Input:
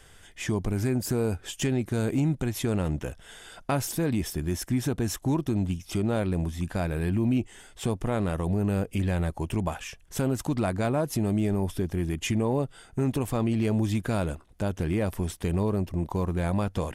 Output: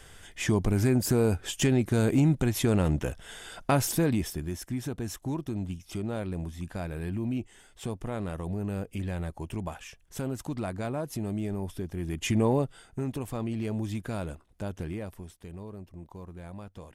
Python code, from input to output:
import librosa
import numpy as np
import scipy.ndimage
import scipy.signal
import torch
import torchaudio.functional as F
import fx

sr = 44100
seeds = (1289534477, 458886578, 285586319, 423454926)

y = fx.gain(x, sr, db=fx.line((3.98, 2.5), (4.57, -6.5), (11.95, -6.5), (12.45, 2.5), (13.06, -6.5), (14.81, -6.5), (15.34, -16.0)))